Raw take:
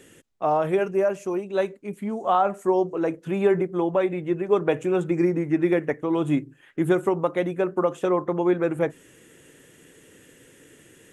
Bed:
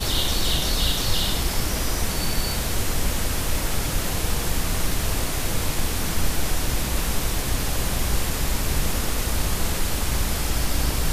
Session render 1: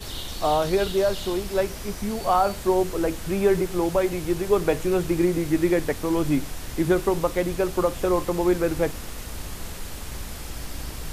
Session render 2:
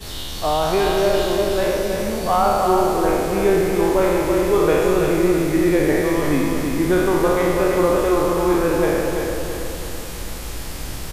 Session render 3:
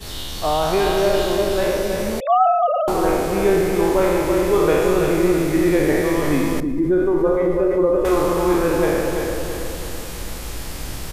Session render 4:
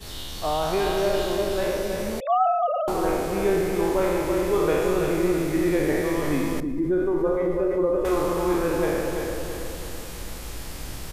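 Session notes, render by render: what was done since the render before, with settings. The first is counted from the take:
add bed -11 dB
spectral sustain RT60 1.89 s; feedback delay 331 ms, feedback 48%, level -5 dB
2.20–2.88 s: formants replaced by sine waves; 6.60–8.05 s: spectral contrast enhancement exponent 1.6
trim -5.5 dB

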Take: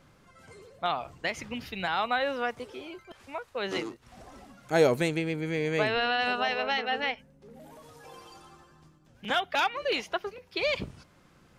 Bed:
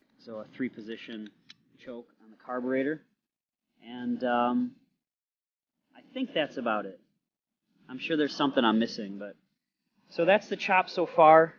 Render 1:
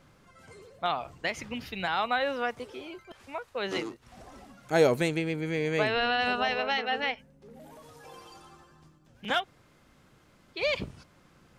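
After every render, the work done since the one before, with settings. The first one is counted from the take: 6.00–6.61 s: bass shelf 150 Hz +8.5 dB; 9.42–10.58 s: room tone, crossfade 0.10 s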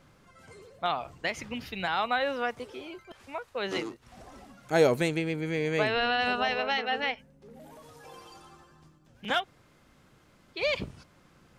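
no audible change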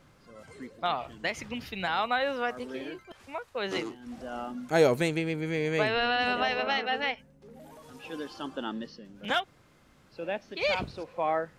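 add bed -11 dB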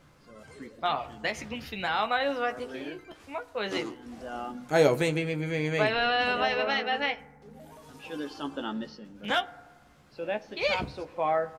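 doubling 14 ms -7 dB; FDN reverb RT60 1.3 s, low-frequency decay 0.9×, high-frequency decay 0.3×, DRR 16.5 dB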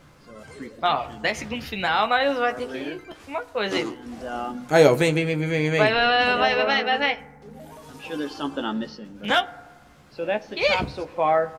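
trim +6.5 dB

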